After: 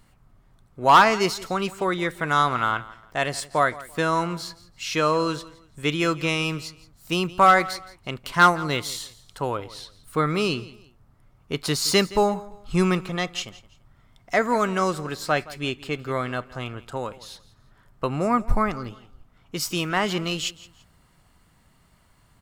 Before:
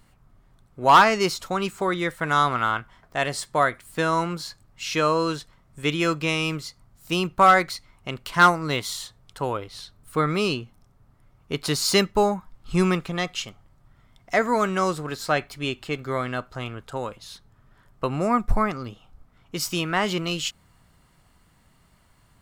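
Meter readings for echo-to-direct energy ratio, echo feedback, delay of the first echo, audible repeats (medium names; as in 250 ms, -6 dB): -18.5 dB, 29%, 169 ms, 2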